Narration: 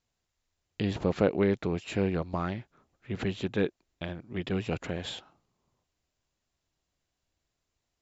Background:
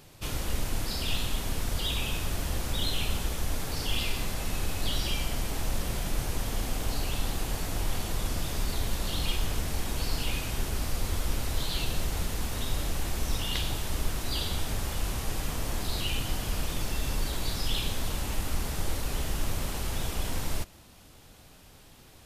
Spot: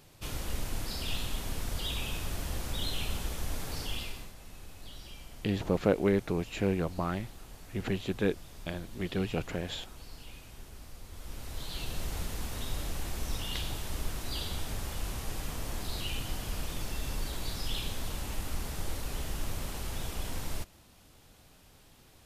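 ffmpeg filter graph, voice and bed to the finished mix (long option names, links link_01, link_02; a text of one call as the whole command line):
ffmpeg -i stem1.wav -i stem2.wav -filter_complex "[0:a]adelay=4650,volume=-1dB[link_01];[1:a]volume=8dB,afade=type=out:start_time=3.76:duration=0.57:silence=0.223872,afade=type=in:start_time=11.1:duration=1.02:silence=0.237137[link_02];[link_01][link_02]amix=inputs=2:normalize=0" out.wav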